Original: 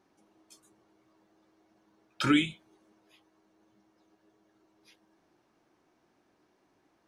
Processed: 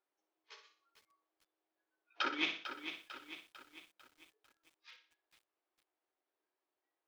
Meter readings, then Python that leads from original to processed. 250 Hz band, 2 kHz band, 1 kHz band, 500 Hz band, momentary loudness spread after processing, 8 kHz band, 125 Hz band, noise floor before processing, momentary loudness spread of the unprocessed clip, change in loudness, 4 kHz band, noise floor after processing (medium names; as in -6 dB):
-18.0 dB, -4.0 dB, -4.5 dB, -9.0 dB, 24 LU, -11.0 dB, -30.5 dB, -72 dBFS, 9 LU, -12.0 dB, -4.0 dB, under -85 dBFS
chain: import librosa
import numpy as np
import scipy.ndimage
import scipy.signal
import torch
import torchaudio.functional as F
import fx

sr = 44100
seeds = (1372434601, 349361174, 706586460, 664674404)

y = fx.cvsd(x, sr, bps=32000)
y = scipy.signal.sosfilt(scipy.signal.butter(4, 370.0, 'highpass', fs=sr, output='sos'), y)
y = fx.noise_reduce_blind(y, sr, reduce_db=26)
y = scipy.signal.sosfilt(scipy.signal.butter(2, 3600.0, 'lowpass', fs=sr, output='sos'), y)
y = fx.over_compress(y, sr, threshold_db=-35.0, ratio=-0.5)
y = fx.doubler(y, sr, ms=16.0, db=-13.5)
y = fx.room_flutter(y, sr, wall_m=10.4, rt60_s=0.42)
y = fx.echo_crushed(y, sr, ms=448, feedback_pct=55, bits=10, wet_db=-9.0)